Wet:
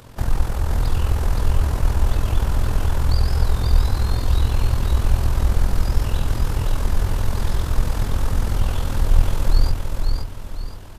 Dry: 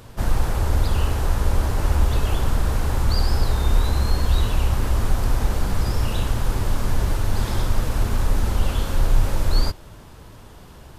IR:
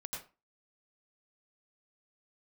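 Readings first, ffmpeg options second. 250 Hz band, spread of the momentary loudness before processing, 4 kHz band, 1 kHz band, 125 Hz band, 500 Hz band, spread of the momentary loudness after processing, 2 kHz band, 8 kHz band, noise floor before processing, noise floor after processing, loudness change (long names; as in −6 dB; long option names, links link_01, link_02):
−1.0 dB, 3 LU, −2.0 dB, −1.5 dB, +1.5 dB, −1.5 dB, 4 LU, −1.5 dB, −1.5 dB, −43 dBFS, −31 dBFS, +1.0 dB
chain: -filter_complex "[0:a]acrossover=split=130[link_01][link_02];[link_02]acompressor=threshold=-30dB:ratio=6[link_03];[link_01][link_03]amix=inputs=2:normalize=0,tremolo=f=42:d=0.667,aecho=1:1:520|1040|1560|2080|2600:0.631|0.233|0.0864|0.032|0.0118,volume=3dB"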